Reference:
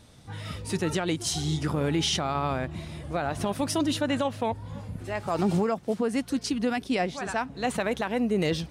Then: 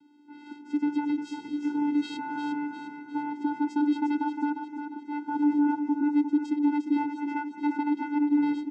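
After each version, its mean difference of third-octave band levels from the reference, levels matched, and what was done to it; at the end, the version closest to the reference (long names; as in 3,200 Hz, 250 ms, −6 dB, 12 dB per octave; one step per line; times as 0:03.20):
16.0 dB: low-pass filter 4,100 Hz 12 dB per octave
dynamic equaliser 580 Hz, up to +4 dB, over −37 dBFS, Q 0.82
channel vocoder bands 8, square 293 Hz
on a send: repeating echo 353 ms, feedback 47%, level −7 dB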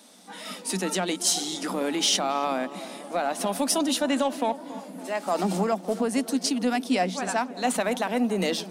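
6.5 dB: Chebyshev high-pass with heavy ripple 180 Hz, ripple 6 dB
in parallel at −11 dB: soft clipping −30.5 dBFS, distortion −9 dB
on the sum: high-shelf EQ 4,000 Hz +12 dB
tape delay 281 ms, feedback 76%, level −13.5 dB, low-pass 1,200 Hz
level +2.5 dB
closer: second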